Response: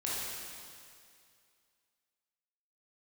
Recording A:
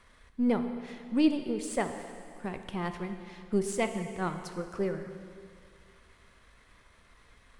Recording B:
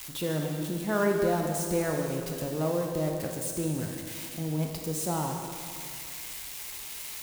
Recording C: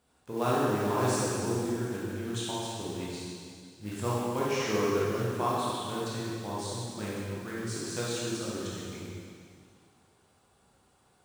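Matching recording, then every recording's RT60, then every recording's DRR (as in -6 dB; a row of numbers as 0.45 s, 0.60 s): C; 2.3 s, 2.3 s, 2.3 s; 7.0 dB, 1.0 dB, -7.5 dB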